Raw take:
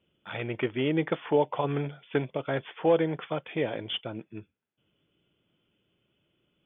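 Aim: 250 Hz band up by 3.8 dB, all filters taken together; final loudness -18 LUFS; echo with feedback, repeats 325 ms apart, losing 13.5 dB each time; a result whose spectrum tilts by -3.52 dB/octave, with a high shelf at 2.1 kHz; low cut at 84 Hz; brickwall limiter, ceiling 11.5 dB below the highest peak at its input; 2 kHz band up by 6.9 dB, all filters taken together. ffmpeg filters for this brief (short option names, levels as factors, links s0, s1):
-af "highpass=84,equalizer=f=250:t=o:g=5,equalizer=f=2000:t=o:g=3.5,highshelf=f=2100:g=8.5,alimiter=limit=0.0891:level=0:latency=1,aecho=1:1:325|650:0.211|0.0444,volume=5.01"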